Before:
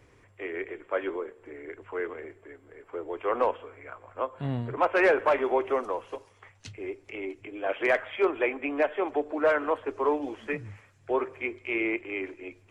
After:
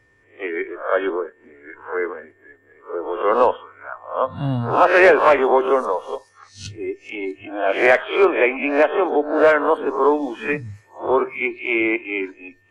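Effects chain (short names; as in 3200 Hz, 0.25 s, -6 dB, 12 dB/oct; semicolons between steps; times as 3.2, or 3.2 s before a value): spectral swells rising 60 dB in 0.48 s; whine 1800 Hz -53 dBFS; spectral noise reduction 14 dB; gain +8.5 dB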